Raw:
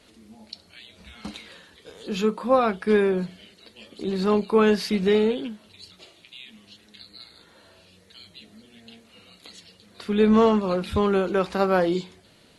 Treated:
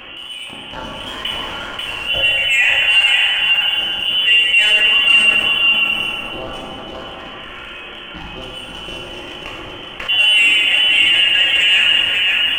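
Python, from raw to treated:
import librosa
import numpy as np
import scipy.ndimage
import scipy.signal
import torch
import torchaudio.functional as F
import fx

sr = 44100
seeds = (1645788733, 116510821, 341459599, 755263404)

p1 = x + fx.echo_single(x, sr, ms=539, db=-5.0, dry=0)
p2 = fx.freq_invert(p1, sr, carrier_hz=3200)
p3 = fx.leveller(p2, sr, passes=1)
p4 = p3 + 0.3 * np.pad(p3, (int(3.6 * sr / 1000.0), 0))[:len(p3)]
p5 = fx.rev_plate(p4, sr, seeds[0], rt60_s=1.8, hf_ratio=0.55, predelay_ms=0, drr_db=-2.5)
p6 = fx.env_flatten(p5, sr, amount_pct=50)
y = p6 * 10.0 ** (-4.0 / 20.0)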